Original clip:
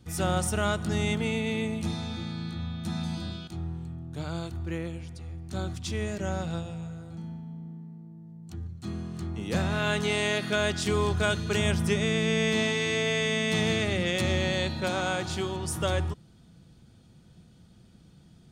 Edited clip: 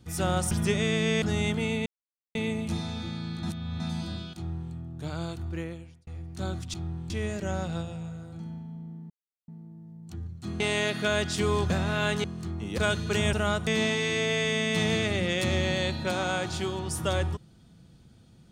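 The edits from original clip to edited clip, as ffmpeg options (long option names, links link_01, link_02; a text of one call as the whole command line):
ffmpeg -i in.wav -filter_complex "[0:a]asplit=16[link_01][link_02][link_03][link_04][link_05][link_06][link_07][link_08][link_09][link_10][link_11][link_12][link_13][link_14][link_15][link_16];[link_01]atrim=end=0.512[link_17];[link_02]atrim=start=11.728:end=12.442[link_18];[link_03]atrim=start=0.848:end=1.49,asetpts=PTS-STARTPTS,afade=type=out:start_time=0.638:duration=0.004:curve=hsin,apad=pad_dur=0.49[link_19];[link_04]atrim=start=1.49:end=2.572,asetpts=PTS-STARTPTS,afade=type=in:duration=0.004:curve=hsin[link_20];[link_05]atrim=start=2.568:end=2.942,asetpts=PTS-STARTPTS,areverse[link_21];[link_06]atrim=start=2.938:end=5.21,asetpts=PTS-STARTPTS,afade=type=out:start_time=1.722:duration=0.55[link_22];[link_07]atrim=start=5.21:end=5.882,asetpts=PTS-STARTPTS,afade=type=in:duration=0.004:curve=hsin[link_23];[link_08]atrim=start=3.508:end=3.872[link_24];[link_09]atrim=start=5.878:end=7.88,asetpts=PTS-STARTPTS,afade=type=out:start_time=1.998:duration=0.004:curve=hsin,apad=pad_dur=0.38[link_25];[link_10]atrim=start=7.88:end=9.002,asetpts=PTS-STARTPTS,afade=type=in:duration=0.004:curve=hsin[link_26];[link_11]atrim=start=10.078:end=11.182[link_27];[link_12]atrim=start=9.538:end=10.082[link_28];[link_13]atrim=start=8.998:end=9.542[link_29];[link_14]atrim=start=11.178:end=11.732[link_30];[link_15]atrim=start=0.508:end=0.852[link_31];[link_16]atrim=start=12.438[link_32];[link_17][link_18]acrossfade=duration=0.004:curve1=hsin:curve2=hsin[link_33];[link_19][link_20]concat=n=2:v=0:a=1[link_34];[link_33][link_34]acrossfade=duration=0.004:curve1=hsin:curve2=hsin[link_35];[link_35][link_21]acrossfade=duration=0.004:curve1=hsin:curve2=hsin[link_36];[link_22][link_23]concat=n=2:v=0:a=1[link_37];[link_36][link_37]acrossfade=duration=0.004:curve1=hsin:curve2=hsin[link_38];[link_38][link_24]acrossfade=duration=0.004:curve1=hsin:curve2=hsin[link_39];[link_25][link_26]concat=n=2:v=0:a=1[link_40];[link_39][link_40]acrossfade=duration=0.004:curve1=hsin:curve2=hsin[link_41];[link_41][link_27]acrossfade=duration=0.004:curve1=hsin:curve2=hsin[link_42];[link_42][link_28]acrossfade=duration=0.004:curve1=hsin:curve2=hsin[link_43];[link_43][link_29]acrossfade=duration=0.004:curve1=hsin:curve2=hsin[link_44];[link_44][link_30]acrossfade=duration=0.004:curve1=hsin:curve2=hsin[link_45];[link_45][link_31]acrossfade=duration=0.004:curve1=hsin:curve2=hsin[link_46];[link_46][link_32]acrossfade=duration=0.004:curve1=hsin:curve2=hsin" out.wav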